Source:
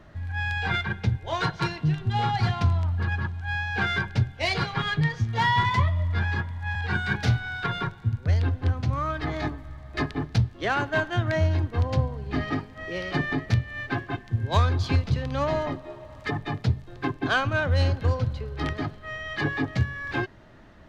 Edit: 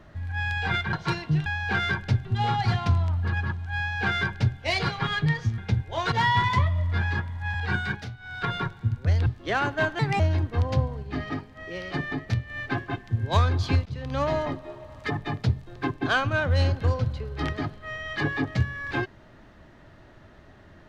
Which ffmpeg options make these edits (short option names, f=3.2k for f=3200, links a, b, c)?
-filter_complex "[0:a]asplit=14[a][b][c][d][e][f][g][h][i][j][k][l][m][n];[a]atrim=end=0.932[o];[b]atrim=start=1.468:end=2.002[p];[c]atrim=start=3.528:end=4.322[q];[d]atrim=start=1.998:end=5.332[r];[e]atrim=start=0.928:end=1.472[s];[f]atrim=start=5.328:end=7.3,asetpts=PTS-STARTPTS,afade=t=out:st=1.682:d=0.29:silence=0.149624[t];[g]atrim=start=7.3:end=7.38,asetpts=PTS-STARTPTS,volume=-16.5dB[u];[h]atrim=start=7.38:end=8.472,asetpts=PTS-STARTPTS,afade=t=in:d=0.29:silence=0.149624[v];[i]atrim=start=10.408:end=11.144[w];[j]atrim=start=11.14:end=11.4,asetpts=PTS-STARTPTS,asetrate=55566,aresample=44100[x];[k]atrim=start=11.396:end=12.232[y];[l]atrim=start=12.228:end=13.702,asetpts=PTS-STARTPTS,volume=-3.5dB[z];[m]atrim=start=13.698:end=15.06,asetpts=PTS-STARTPTS,afade=t=out:st=1.358:d=0.004:c=hsin:silence=0.105925[aa];[n]atrim=start=15.06,asetpts=PTS-STARTPTS,afade=t=in:d=0.3:silence=0.105925[ab];[o][p]acrossfade=d=0.004:c1=hsin:c2=hsin[ac];[ac][q]acrossfade=d=0.004:c1=hsin:c2=hsin[ad];[ad][r]acrossfade=d=0.004:c1=hsin:c2=hsin[ae];[ae][s]acrossfade=d=0.004:c1=hsin:c2=hsin[af];[t][u][v]concat=n=3:v=0:a=1[ag];[af][ag]acrossfade=d=0.004:c1=hsin:c2=hsin[ah];[ah][w]acrossfade=d=0.004:c1=hsin:c2=hsin[ai];[ai][x]acrossfade=d=0.004:c1=hsin:c2=hsin[aj];[aj][y]acrossfade=d=0.004:c1=hsin:c2=hsin[ak];[ak][z]acrossfade=d=0.004:c1=hsin:c2=hsin[al];[aa][ab]concat=n=2:v=0:a=1[am];[al][am]acrossfade=d=0.004:c1=hsin:c2=hsin"